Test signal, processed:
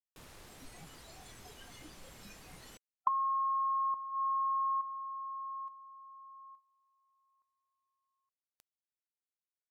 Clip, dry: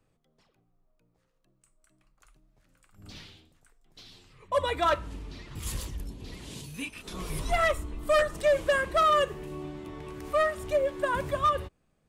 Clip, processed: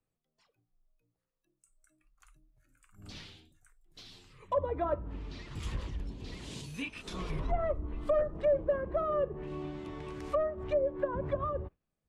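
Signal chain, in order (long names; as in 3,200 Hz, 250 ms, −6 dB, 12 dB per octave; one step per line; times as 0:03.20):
noise reduction from a noise print of the clip's start 14 dB
treble cut that deepens with the level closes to 610 Hz, closed at −25 dBFS
level −1 dB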